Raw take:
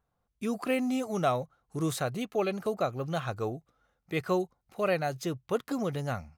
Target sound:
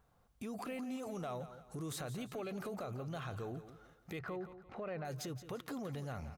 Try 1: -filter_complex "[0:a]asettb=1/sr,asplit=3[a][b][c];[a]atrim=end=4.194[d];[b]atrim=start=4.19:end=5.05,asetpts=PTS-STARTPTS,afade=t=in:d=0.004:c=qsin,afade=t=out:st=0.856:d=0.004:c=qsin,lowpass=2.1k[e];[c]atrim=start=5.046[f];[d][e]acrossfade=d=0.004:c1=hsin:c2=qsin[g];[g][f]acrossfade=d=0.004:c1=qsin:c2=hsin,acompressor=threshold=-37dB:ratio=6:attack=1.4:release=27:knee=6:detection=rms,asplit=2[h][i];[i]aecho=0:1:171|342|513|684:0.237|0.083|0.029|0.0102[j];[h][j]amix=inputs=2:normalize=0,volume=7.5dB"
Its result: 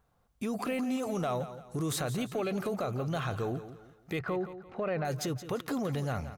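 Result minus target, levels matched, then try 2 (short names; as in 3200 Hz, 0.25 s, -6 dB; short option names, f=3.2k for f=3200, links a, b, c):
compressor: peak gain reduction -10 dB
-filter_complex "[0:a]asettb=1/sr,asplit=3[a][b][c];[a]atrim=end=4.194[d];[b]atrim=start=4.19:end=5.05,asetpts=PTS-STARTPTS,afade=t=in:d=0.004:c=qsin,afade=t=out:st=0.856:d=0.004:c=qsin,lowpass=2.1k[e];[c]atrim=start=5.046[f];[d][e]acrossfade=d=0.004:c1=hsin:c2=qsin[g];[g][f]acrossfade=d=0.004:c1=qsin:c2=hsin,acompressor=threshold=-49dB:ratio=6:attack=1.4:release=27:knee=6:detection=rms,asplit=2[h][i];[i]aecho=0:1:171|342|513|684:0.237|0.083|0.029|0.0102[j];[h][j]amix=inputs=2:normalize=0,volume=7.5dB"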